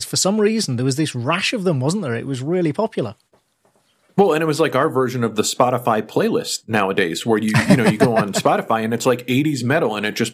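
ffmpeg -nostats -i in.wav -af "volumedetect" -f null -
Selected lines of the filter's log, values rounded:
mean_volume: -18.6 dB
max_volume: -1.1 dB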